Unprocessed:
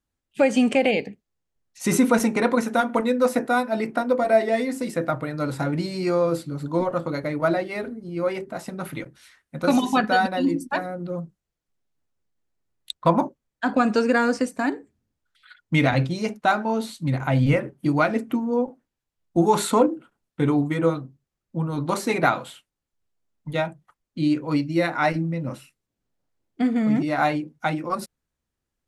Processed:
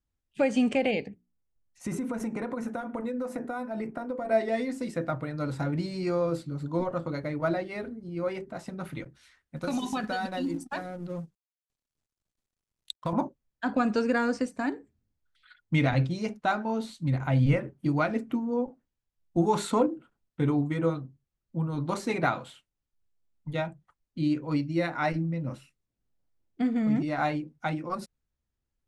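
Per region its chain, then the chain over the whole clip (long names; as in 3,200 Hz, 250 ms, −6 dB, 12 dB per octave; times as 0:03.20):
0:01.08–0:04.31: mains-hum notches 60/120/180/240/300/360/420 Hz + downward compressor 10 to 1, threshold −22 dBFS + parametric band 4,100 Hz −9.5 dB 1.6 octaves
0:09.56–0:13.13: mu-law and A-law mismatch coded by A + downward compressor 4 to 1, threshold −21 dBFS + high-shelf EQ 4,900 Hz +8.5 dB
whole clip: low-pass filter 8,600 Hz 12 dB per octave; low-shelf EQ 120 Hz +10 dB; level −7 dB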